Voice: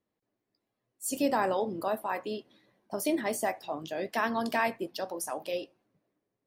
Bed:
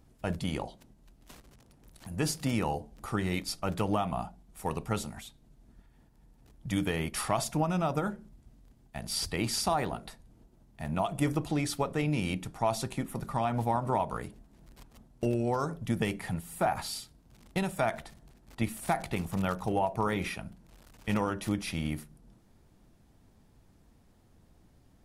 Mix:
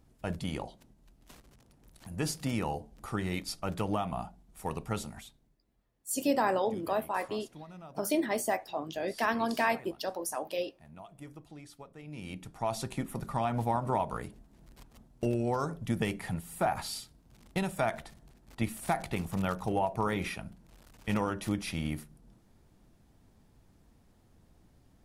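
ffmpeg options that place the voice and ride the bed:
ffmpeg -i stem1.wav -i stem2.wav -filter_complex "[0:a]adelay=5050,volume=0dB[link_01];[1:a]volume=15.5dB,afade=type=out:start_time=5.2:duration=0.39:silence=0.149624,afade=type=in:start_time=12.03:duration=0.95:silence=0.125893[link_02];[link_01][link_02]amix=inputs=2:normalize=0" out.wav

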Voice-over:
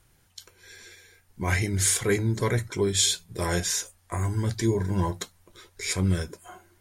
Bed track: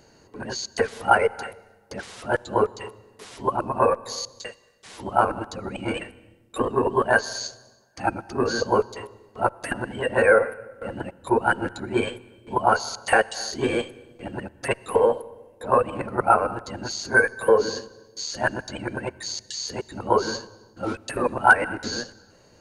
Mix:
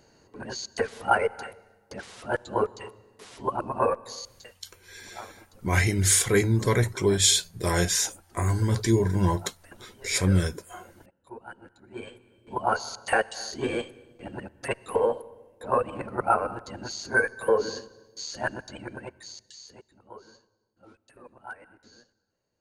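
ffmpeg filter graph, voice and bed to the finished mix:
ffmpeg -i stem1.wav -i stem2.wav -filter_complex "[0:a]adelay=4250,volume=2.5dB[link_01];[1:a]volume=13dB,afade=type=out:start_time=3.91:duration=0.83:silence=0.125893,afade=type=in:start_time=11.82:duration=0.99:silence=0.133352,afade=type=out:start_time=18.26:duration=1.73:silence=0.0891251[link_02];[link_01][link_02]amix=inputs=2:normalize=0" out.wav

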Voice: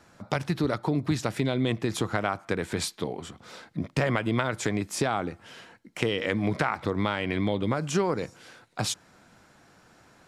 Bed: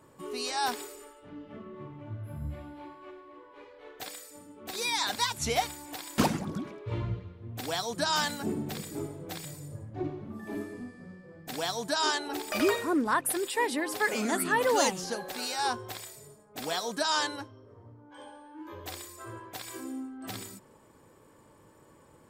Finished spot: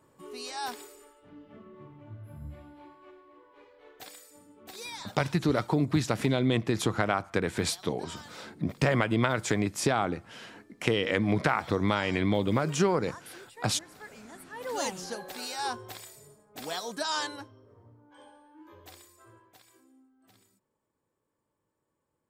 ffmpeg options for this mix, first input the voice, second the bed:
ffmpeg -i stem1.wav -i stem2.wav -filter_complex "[0:a]adelay=4850,volume=0.5dB[link_01];[1:a]volume=11dB,afade=type=out:start_time=4.59:duration=0.58:silence=0.199526,afade=type=in:start_time=14.52:duration=0.49:silence=0.149624,afade=type=out:start_time=17.43:duration=2.43:silence=0.0944061[link_02];[link_01][link_02]amix=inputs=2:normalize=0" out.wav

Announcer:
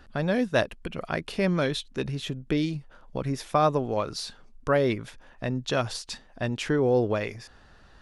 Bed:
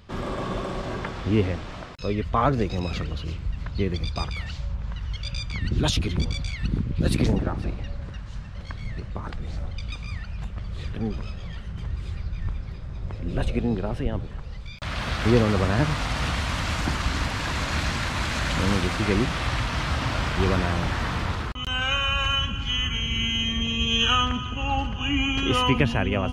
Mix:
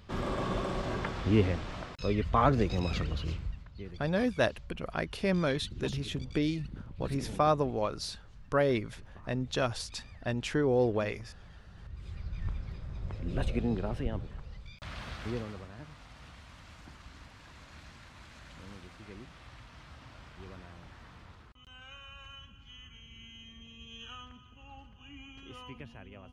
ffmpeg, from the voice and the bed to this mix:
ffmpeg -i stem1.wav -i stem2.wav -filter_complex "[0:a]adelay=3850,volume=-4dB[link_01];[1:a]volume=9dB,afade=type=out:start_time=3.32:duration=0.32:silence=0.177828,afade=type=in:start_time=11.81:duration=0.66:silence=0.237137,afade=type=out:start_time=13.87:duration=1.81:silence=0.105925[link_02];[link_01][link_02]amix=inputs=2:normalize=0" out.wav

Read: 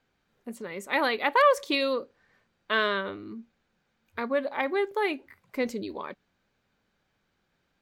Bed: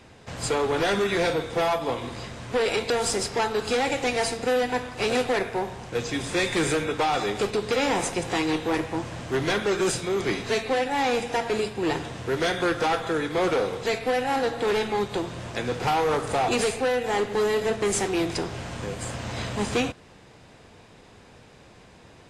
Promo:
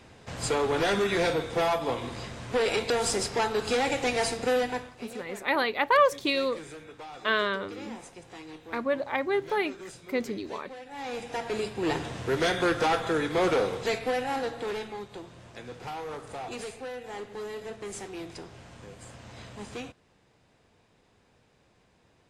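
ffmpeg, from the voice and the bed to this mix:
ffmpeg -i stem1.wav -i stem2.wav -filter_complex "[0:a]adelay=4550,volume=-0.5dB[link_01];[1:a]volume=16.5dB,afade=type=out:start_time=4.56:duration=0.46:silence=0.133352,afade=type=in:start_time=10.85:duration=1.25:silence=0.11885,afade=type=out:start_time=13.6:duration=1.43:silence=0.223872[link_02];[link_01][link_02]amix=inputs=2:normalize=0" out.wav

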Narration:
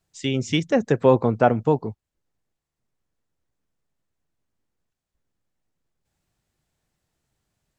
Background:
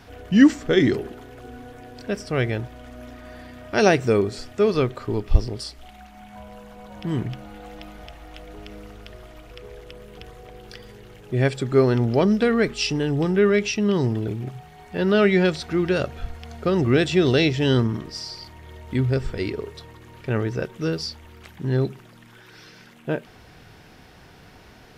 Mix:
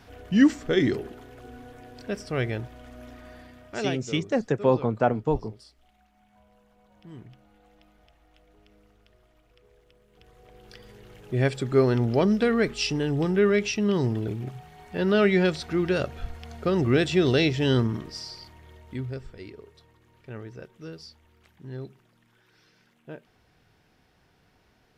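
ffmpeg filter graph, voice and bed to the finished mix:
ffmpeg -i stem1.wav -i stem2.wav -filter_complex "[0:a]adelay=3600,volume=-5dB[link_01];[1:a]volume=11.5dB,afade=type=out:start_time=3.21:duration=0.81:silence=0.188365,afade=type=in:start_time=10.09:duration=1.15:silence=0.158489,afade=type=out:start_time=17.96:duration=1.33:silence=0.237137[link_02];[link_01][link_02]amix=inputs=2:normalize=0" out.wav

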